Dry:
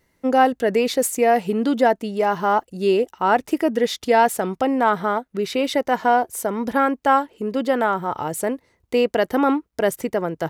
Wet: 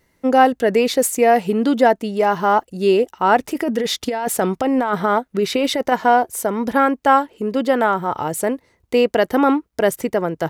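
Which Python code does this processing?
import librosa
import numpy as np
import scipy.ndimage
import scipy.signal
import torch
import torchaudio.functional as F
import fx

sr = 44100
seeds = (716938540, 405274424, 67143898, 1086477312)

y = fx.over_compress(x, sr, threshold_db=-21.0, ratio=-1.0, at=(3.39, 5.92))
y = y * 10.0 ** (3.0 / 20.0)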